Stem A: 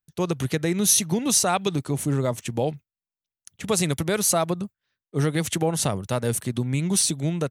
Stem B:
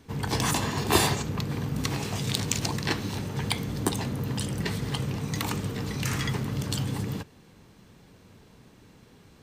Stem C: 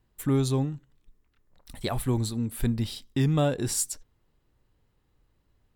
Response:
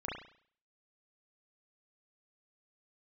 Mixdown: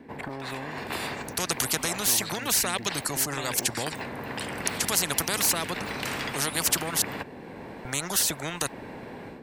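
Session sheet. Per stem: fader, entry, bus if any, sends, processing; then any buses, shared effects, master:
+2.5 dB, 1.20 s, muted 0:07.02–0:07.85, no bus, no send, reverb reduction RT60 0.76 s; flat-topped bell 2,800 Hz −10 dB 1.1 octaves
−8.5 dB, 0.00 s, bus A, no send, automatic gain control gain up to 13.5 dB; three-way crossover with the lows and the highs turned down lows −17 dB, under 190 Hz, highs −19 dB, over 2,300 Hz; automatic ducking −6 dB, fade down 0.25 s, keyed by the third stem
−1.5 dB, 0.00 s, bus A, no send, high-pass filter 190 Hz; auto-filter low-pass square 2.4 Hz 720–2,000 Hz
bus A: 0.0 dB, thirty-one-band graphic EQ 250 Hz +7 dB, 1,250 Hz −12 dB, 3,150 Hz −5 dB, 6,300 Hz −7 dB; downward compressor 6 to 1, threshold −29 dBFS, peak gain reduction 10 dB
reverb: not used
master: every bin compressed towards the loudest bin 4 to 1

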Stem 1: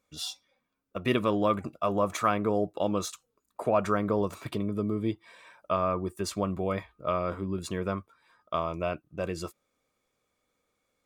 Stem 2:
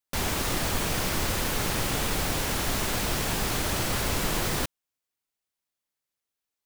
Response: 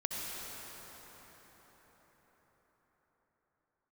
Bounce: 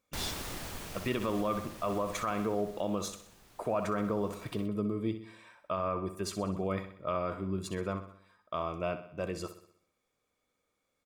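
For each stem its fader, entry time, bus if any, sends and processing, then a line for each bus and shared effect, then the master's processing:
−3.5 dB, 0.00 s, no send, echo send −11.5 dB, no processing
0:02.21 −8 dB → 0:03.01 −18.5 dB, 0.00 s, no send, no echo send, automatic ducking −14 dB, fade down 1.65 s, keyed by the first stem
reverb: not used
echo: repeating echo 63 ms, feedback 51%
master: brickwall limiter −21.5 dBFS, peak gain reduction 7 dB

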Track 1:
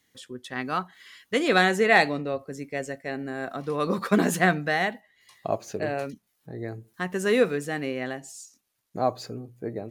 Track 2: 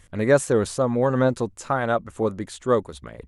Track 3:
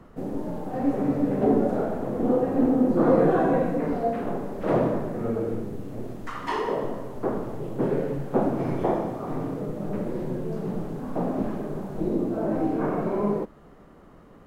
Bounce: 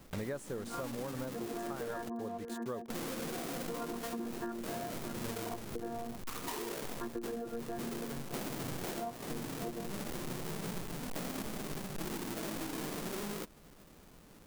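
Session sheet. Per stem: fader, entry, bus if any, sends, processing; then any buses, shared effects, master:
−1.5 dB, 0.00 s, bus A, no send, echo send −15 dB, channel vocoder with a chord as carrier bare fifth, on A#3; Butterworth low-pass 1,600 Hz 72 dB per octave; low-shelf EQ 170 Hz −9.5 dB
−3.0 dB, 0.00 s, no bus, no send, no echo send, bit-depth reduction 6 bits, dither none; automatic ducking −7 dB, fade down 1.30 s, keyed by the first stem
−12.0 dB, 0.00 s, muted 0:02.09–0:02.90, bus A, no send, no echo send, each half-wave held at its own peak
bus A: 0.0 dB, high-shelf EQ 5,800 Hz +10.5 dB; brickwall limiter −19.5 dBFS, peak gain reduction 9.5 dB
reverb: not used
echo: single-tap delay 606 ms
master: downward compressor 12 to 1, threshold −36 dBFS, peak gain reduction 20 dB

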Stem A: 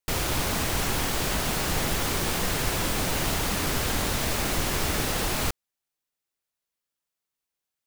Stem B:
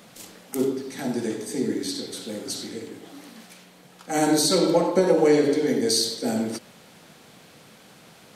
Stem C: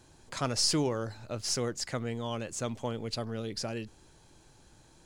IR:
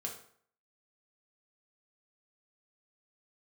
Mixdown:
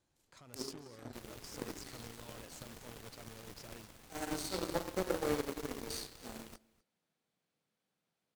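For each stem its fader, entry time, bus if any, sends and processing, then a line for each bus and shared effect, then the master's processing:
−14.0 dB, 1.05 s, no send, echo send −12 dB, no processing
−12.0 dB, 0.00 s, no send, echo send −13.5 dB, no processing
+2.0 dB, 0.00 s, no send, echo send −12.5 dB, brickwall limiter −26 dBFS, peak gain reduction 11 dB; soft clipping −35.5 dBFS, distortion −11 dB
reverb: not used
echo: single-tap delay 250 ms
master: harmonic generator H 3 −13 dB, 5 −36 dB, 7 −26 dB, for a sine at −17.5 dBFS

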